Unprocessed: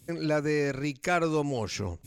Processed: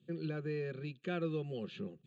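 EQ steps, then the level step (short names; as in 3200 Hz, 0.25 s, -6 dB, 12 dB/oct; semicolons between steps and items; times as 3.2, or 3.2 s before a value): speaker cabinet 210–3700 Hz, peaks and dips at 440 Hz -9 dB, 900 Hz -10 dB, 1400 Hz -10 dB; fixed phaser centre 420 Hz, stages 8; fixed phaser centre 2300 Hz, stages 4; +1.5 dB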